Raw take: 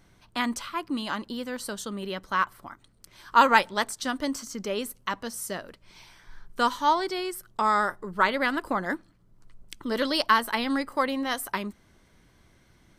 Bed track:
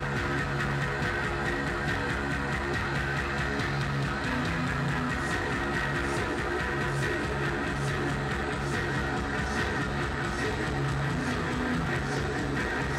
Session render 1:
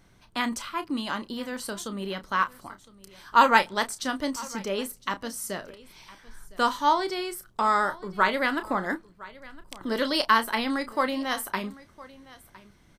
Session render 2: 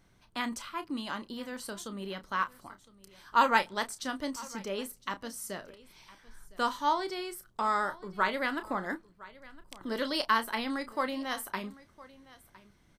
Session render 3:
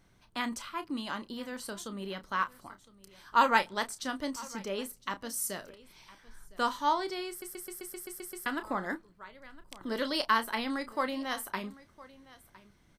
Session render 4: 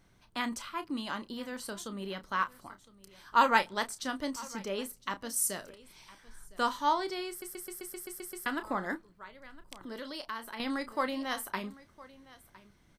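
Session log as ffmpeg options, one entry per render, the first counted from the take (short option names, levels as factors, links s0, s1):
-filter_complex "[0:a]asplit=2[s0][s1];[s1]adelay=31,volume=0.282[s2];[s0][s2]amix=inputs=2:normalize=0,aecho=1:1:1010:0.0944"
-af "volume=0.501"
-filter_complex "[0:a]asettb=1/sr,asplit=3[s0][s1][s2];[s0]atrim=end=5.294[s3];[s1]atrim=start=5.29:end=5.69,asetpts=PTS-STARTPTS,afade=t=in:d=0.004:c=qsin,afade=t=out:st=0.396:d=0.004:c=qsin,aemphasis=mode=production:type=cd[s4];[s2]atrim=start=5.686[s5];[s3][s4]acrossfade=d=0.004:c1=hsin:c2=qsin[s6];[s6][s5]acrossfade=d=0.004:c1=qsin:c2=hsin,asplit=10[s7][s8][s9][s10][s11][s12][s13][s14][s15][s16];[s7]atrim=end=7.422[s17];[s8]atrim=start=7.288:end=7.422[s18];[s9]atrim=start=7.288:end=7.422[s19];[s10]atrim=start=7.288:end=7.422[s20];[s11]atrim=start=7.288:end=7.422[s21];[s12]atrim=start=7.288:end=7.422[s22];[s13]atrim=start=7.288:end=7.422[s23];[s14]atrim=start=7.288:end=7.422[s24];[s15]atrim=start=7.288:end=7.422[s25];[s16]atrim=start=8.458[s26];[s17][s18]acrossfade=d=0.004:c1=hsin:c2=hsin[s27];[s27][s19]acrossfade=d=0.004:c1=hsin:c2=hsin[s28];[s28][s20]acrossfade=d=0.004:c1=hsin:c2=hsin[s29];[s29][s21]acrossfade=d=0.004:c1=hsin:c2=hsin[s30];[s30][s22]acrossfade=d=0.004:c1=hsin:c2=hsin[s31];[s31][s23]acrossfade=d=0.004:c1=hsin:c2=hsin[s32];[s32][s24]acrossfade=d=0.004:c1=hsin:c2=hsin[s33];[s33][s25]acrossfade=d=0.004:c1=hsin:c2=hsin[s34];[s34][s26]acrossfade=d=0.004:c1=hsin:c2=hsin"
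-filter_complex "[0:a]asettb=1/sr,asplit=3[s0][s1][s2];[s0]atrim=end=5.364[s3];[s1]atrim=start=5.36:end=6.6,asetpts=PTS-STARTPTS,afade=t=in:d=0.004:c=qsin,afade=t=out:st=1.236:d=0.004:c=qsin,equalizer=f=8700:t=o:w=0.91:g=5.5[s4];[s2]atrim=start=6.596[s5];[s3][s4]acrossfade=d=0.004:c1=hsin:c2=qsin[s6];[s6][s5]acrossfade=d=0.004:c1=qsin:c2=hsin,asettb=1/sr,asplit=3[s7][s8][s9];[s7]atrim=end=9.774[s10];[s8]atrim=start=9.77:end=10.6,asetpts=PTS-STARTPTS,afade=t=in:d=0.004:c=qsin,afade=t=out:st=0.826:d=0.004:c=qsin,acompressor=threshold=0.00562:ratio=2:attack=3.2:release=140:knee=1:detection=peak[s11];[s9]atrim=start=10.596[s12];[s10][s11]acrossfade=d=0.004:c1=hsin:c2=qsin[s13];[s13][s12]acrossfade=d=0.004:c1=qsin:c2=hsin"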